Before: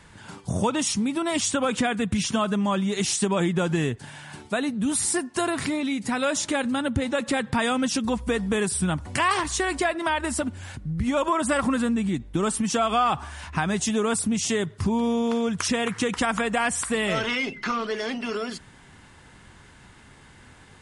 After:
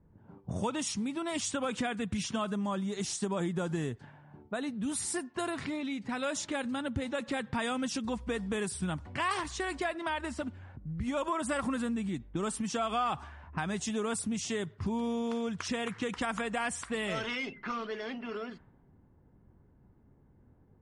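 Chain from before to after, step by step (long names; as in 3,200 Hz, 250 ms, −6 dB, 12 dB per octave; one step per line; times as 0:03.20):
low-pass that shuts in the quiet parts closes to 400 Hz, open at −20.5 dBFS
0:02.49–0:04.62: dynamic equaliser 2,600 Hz, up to −6 dB, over −45 dBFS, Q 1.5
level −9 dB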